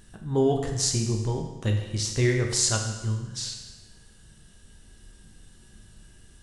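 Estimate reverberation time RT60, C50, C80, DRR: 1.1 s, 5.5 dB, 7.5 dB, 2.0 dB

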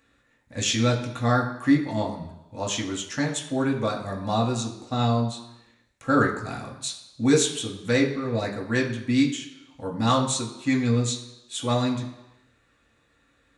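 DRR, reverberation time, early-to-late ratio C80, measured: -2.0 dB, 1.0 s, 11.0 dB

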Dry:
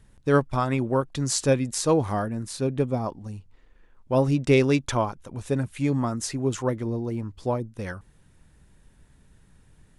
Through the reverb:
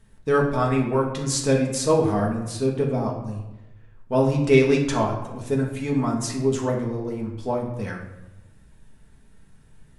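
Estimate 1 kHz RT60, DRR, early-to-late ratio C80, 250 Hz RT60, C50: 0.95 s, -2.0 dB, 8.5 dB, 1.2 s, 5.5 dB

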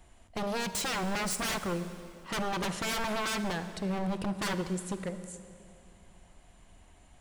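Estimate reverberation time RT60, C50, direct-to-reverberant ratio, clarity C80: 2.5 s, 11.0 dB, 10.5 dB, 12.0 dB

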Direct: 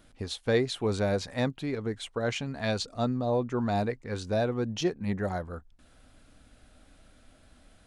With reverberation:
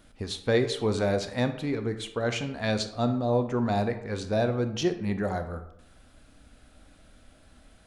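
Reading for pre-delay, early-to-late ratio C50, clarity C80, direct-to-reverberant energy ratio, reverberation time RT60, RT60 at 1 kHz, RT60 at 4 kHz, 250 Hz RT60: 24 ms, 10.5 dB, 13.5 dB, 8.5 dB, 0.75 s, 0.75 s, 0.50 s, 0.80 s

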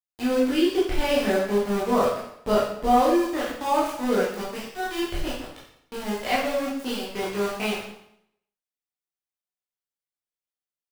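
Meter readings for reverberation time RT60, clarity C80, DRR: 0.70 s, 6.0 dB, -7.5 dB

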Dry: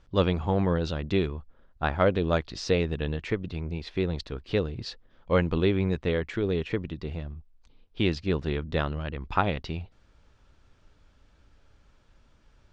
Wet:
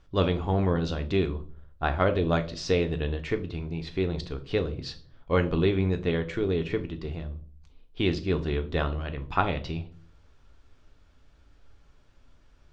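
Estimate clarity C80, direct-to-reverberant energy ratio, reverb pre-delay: 20.5 dB, 6.5 dB, 3 ms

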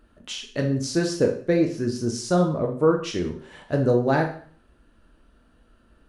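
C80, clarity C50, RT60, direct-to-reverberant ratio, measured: 12.0 dB, 8.0 dB, 0.50 s, 1.5 dB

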